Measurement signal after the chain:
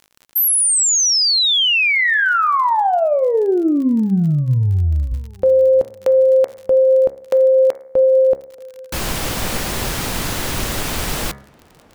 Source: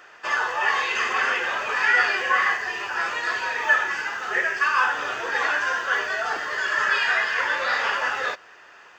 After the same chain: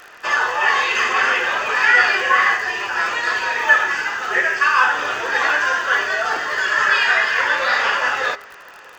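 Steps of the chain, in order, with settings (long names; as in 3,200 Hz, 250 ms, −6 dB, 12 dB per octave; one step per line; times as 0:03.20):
hum removal 68.19 Hz, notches 33
surface crackle 46 per second −36 dBFS
tape delay 633 ms, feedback 52%, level −23 dB, low-pass 1,100 Hz
level +6 dB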